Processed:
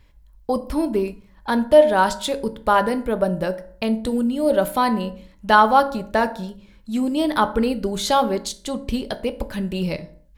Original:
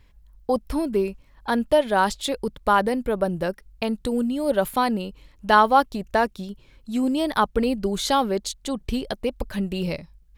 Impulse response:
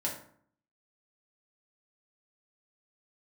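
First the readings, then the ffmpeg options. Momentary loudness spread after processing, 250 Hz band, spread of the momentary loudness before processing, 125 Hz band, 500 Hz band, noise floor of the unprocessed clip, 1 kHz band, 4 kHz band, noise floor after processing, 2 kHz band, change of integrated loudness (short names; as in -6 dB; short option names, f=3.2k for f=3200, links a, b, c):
13 LU, +2.5 dB, 11 LU, +2.0 dB, +3.5 dB, -55 dBFS, +2.5 dB, +1.5 dB, -52 dBFS, +2.5 dB, +3.0 dB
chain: -filter_complex "[0:a]asplit=2[a][b];[1:a]atrim=start_sample=2205,afade=t=out:st=0.37:d=0.01,atrim=end_sample=16758[c];[b][c]afir=irnorm=-1:irlink=0,volume=-9.5dB[d];[a][d]amix=inputs=2:normalize=0,volume=-1dB"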